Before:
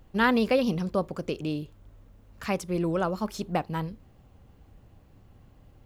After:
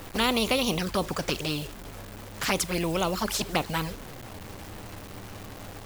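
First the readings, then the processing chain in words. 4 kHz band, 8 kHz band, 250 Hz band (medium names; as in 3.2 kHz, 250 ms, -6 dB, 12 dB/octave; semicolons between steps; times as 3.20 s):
+10.5 dB, +14.0 dB, -2.5 dB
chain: touch-sensitive flanger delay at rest 11.8 ms, full sweep at -23 dBFS; bit crusher 10-bit; spectrum-flattening compressor 2:1; trim +3.5 dB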